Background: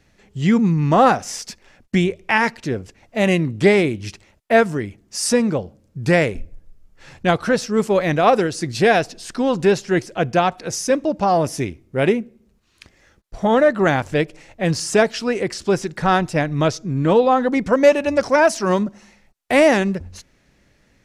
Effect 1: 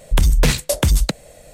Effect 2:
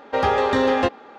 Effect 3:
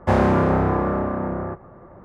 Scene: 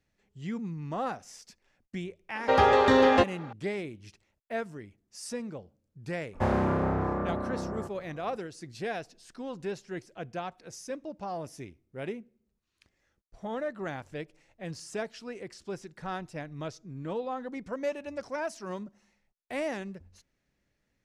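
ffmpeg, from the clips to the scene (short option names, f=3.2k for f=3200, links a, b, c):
-filter_complex "[0:a]volume=-19.5dB[a];[2:a]atrim=end=1.18,asetpts=PTS-STARTPTS,volume=-1.5dB,afade=t=in:d=0.004:c=hsin,afade=t=out:st=1.176:d=0.004:c=hsin,adelay=2350[b];[3:a]atrim=end=2.04,asetpts=PTS-STARTPTS,volume=-9dB,afade=t=in:d=0.004:c=hsin,afade=t=out:st=2.036:d=0.004:c=hsin,adelay=6330[c];[a][b][c]amix=inputs=3:normalize=0"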